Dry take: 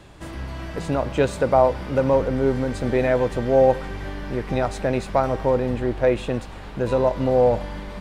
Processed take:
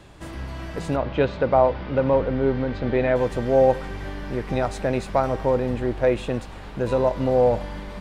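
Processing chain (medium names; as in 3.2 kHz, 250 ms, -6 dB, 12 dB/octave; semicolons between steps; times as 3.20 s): 0.96–3.16 s: low-pass 4.2 kHz 24 dB/octave; trim -1 dB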